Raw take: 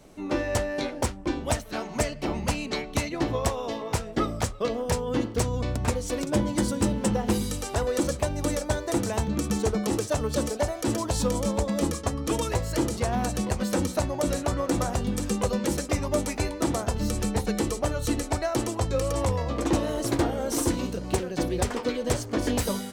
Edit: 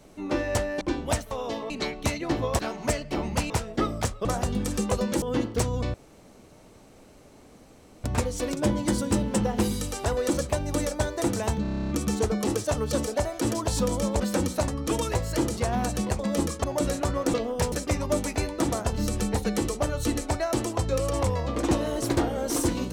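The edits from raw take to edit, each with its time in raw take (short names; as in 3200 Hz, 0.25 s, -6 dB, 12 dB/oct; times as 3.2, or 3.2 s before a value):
0.81–1.2 cut
1.7–2.61 swap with 3.5–3.89
4.64–5.02 swap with 14.77–15.74
5.74 insert room tone 2.10 s
9.32 stutter 0.03 s, 10 plays
11.63–12.08 swap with 13.59–14.07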